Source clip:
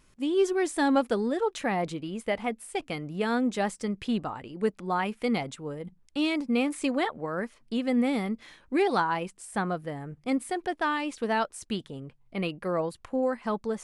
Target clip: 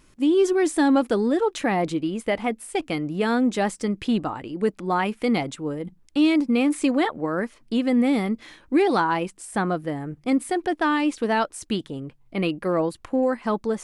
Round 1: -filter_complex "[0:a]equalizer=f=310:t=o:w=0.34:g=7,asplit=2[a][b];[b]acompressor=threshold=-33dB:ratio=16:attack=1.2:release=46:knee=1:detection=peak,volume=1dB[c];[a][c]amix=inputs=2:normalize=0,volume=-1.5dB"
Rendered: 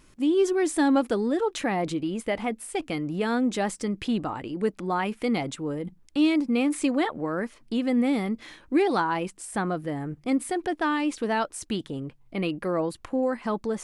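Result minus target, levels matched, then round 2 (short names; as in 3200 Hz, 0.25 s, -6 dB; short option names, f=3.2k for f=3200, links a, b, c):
compressor: peak gain reduction +11 dB
-filter_complex "[0:a]equalizer=f=310:t=o:w=0.34:g=7,asplit=2[a][b];[b]acompressor=threshold=-21.5dB:ratio=16:attack=1.2:release=46:knee=1:detection=peak,volume=1dB[c];[a][c]amix=inputs=2:normalize=0,volume=-1.5dB"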